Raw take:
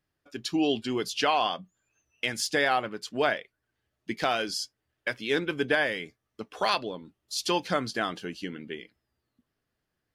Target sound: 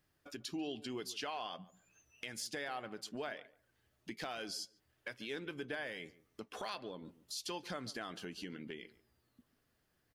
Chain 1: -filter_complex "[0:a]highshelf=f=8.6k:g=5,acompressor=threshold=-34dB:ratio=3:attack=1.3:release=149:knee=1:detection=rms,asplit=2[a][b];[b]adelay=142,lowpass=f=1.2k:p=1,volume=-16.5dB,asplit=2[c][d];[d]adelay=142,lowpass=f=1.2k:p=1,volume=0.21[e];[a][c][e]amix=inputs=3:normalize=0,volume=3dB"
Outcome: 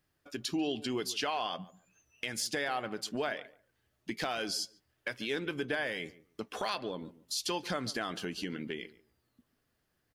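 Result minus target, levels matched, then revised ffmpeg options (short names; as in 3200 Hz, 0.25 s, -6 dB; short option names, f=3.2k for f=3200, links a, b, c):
compressor: peak gain reduction -8 dB
-filter_complex "[0:a]highshelf=f=8.6k:g=5,acompressor=threshold=-46dB:ratio=3:attack=1.3:release=149:knee=1:detection=rms,asplit=2[a][b];[b]adelay=142,lowpass=f=1.2k:p=1,volume=-16.5dB,asplit=2[c][d];[d]adelay=142,lowpass=f=1.2k:p=1,volume=0.21[e];[a][c][e]amix=inputs=3:normalize=0,volume=3dB"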